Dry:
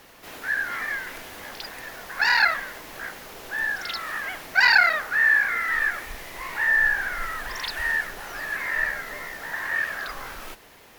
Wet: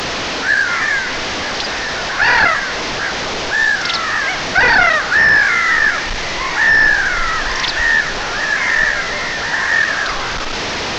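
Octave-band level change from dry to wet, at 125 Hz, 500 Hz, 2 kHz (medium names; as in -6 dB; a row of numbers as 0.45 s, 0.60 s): no reading, +16.0 dB, +9.5 dB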